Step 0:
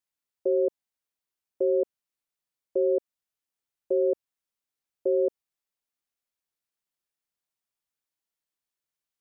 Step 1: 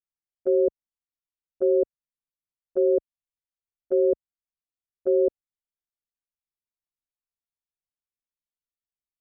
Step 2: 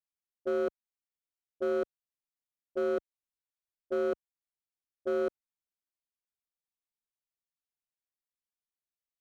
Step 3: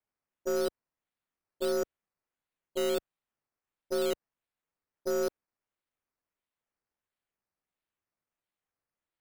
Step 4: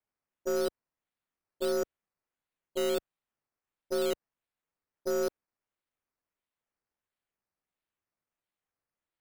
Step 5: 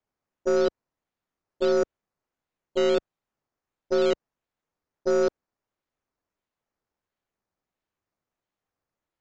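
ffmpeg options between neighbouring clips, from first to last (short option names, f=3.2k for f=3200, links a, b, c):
-af "aemphasis=mode=reproduction:type=riaa,agate=range=-16dB:threshold=-22dB:ratio=16:detection=peak"
-af "volume=19.5dB,asoftclip=hard,volume=-19.5dB,volume=-6.5dB"
-af "aeval=exprs='if(lt(val(0),0),0.708*val(0),val(0))':c=same,acrusher=samples=10:mix=1:aa=0.000001:lfo=1:lforange=6:lforate=1.5,volume=1.5dB"
-af anull
-filter_complex "[0:a]asplit=2[a][b];[b]adynamicsmooth=sensitivity=6:basefreq=1.8k,volume=-0.5dB[c];[a][c]amix=inputs=2:normalize=0,aresample=16000,aresample=44100,volume=2dB"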